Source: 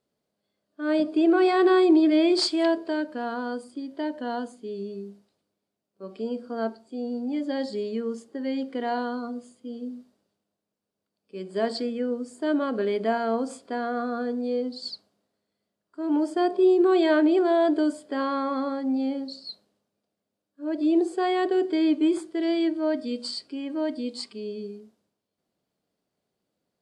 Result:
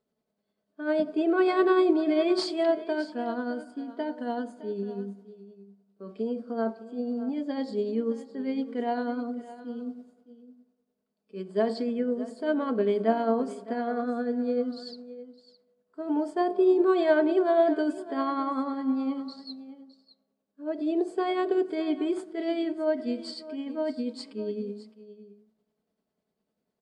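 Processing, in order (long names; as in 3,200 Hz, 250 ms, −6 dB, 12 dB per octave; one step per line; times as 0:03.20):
high-shelf EQ 2,800 Hz −8.5 dB
comb filter 4.6 ms, depth 45%
on a send at −17 dB: convolution reverb RT60 1.8 s, pre-delay 5 ms
on the sum: amplitude tremolo 10 Hz, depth 41%
single-tap delay 613 ms −16 dB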